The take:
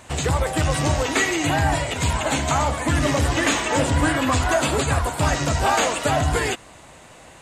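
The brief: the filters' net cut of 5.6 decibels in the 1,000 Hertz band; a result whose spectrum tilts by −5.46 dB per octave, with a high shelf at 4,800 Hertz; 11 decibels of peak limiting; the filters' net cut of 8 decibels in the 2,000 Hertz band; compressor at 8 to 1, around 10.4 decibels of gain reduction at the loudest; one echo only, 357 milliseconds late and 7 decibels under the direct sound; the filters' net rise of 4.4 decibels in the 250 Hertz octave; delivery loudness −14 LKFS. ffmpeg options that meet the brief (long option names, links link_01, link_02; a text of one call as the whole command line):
ffmpeg -i in.wav -af "equalizer=frequency=250:width_type=o:gain=6,equalizer=frequency=1000:width_type=o:gain=-6,equalizer=frequency=2000:width_type=o:gain=-7,highshelf=frequency=4800:gain=-8,acompressor=threshold=-26dB:ratio=8,alimiter=level_in=3dB:limit=-24dB:level=0:latency=1,volume=-3dB,aecho=1:1:357:0.447,volume=21dB" out.wav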